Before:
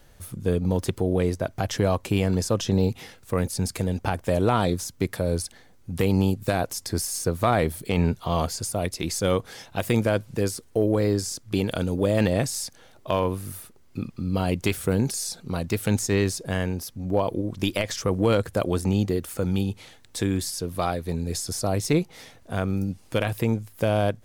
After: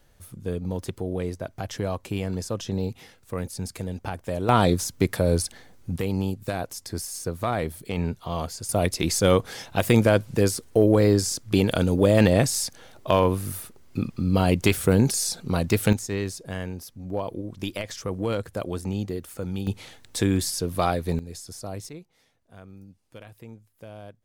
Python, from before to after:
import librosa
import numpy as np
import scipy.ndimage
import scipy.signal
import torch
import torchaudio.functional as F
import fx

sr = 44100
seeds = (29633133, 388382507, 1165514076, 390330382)

y = fx.gain(x, sr, db=fx.steps((0.0, -6.0), (4.49, 3.5), (5.96, -5.0), (8.69, 4.0), (15.93, -6.0), (19.67, 2.5), (21.19, -10.0), (21.89, -20.0)))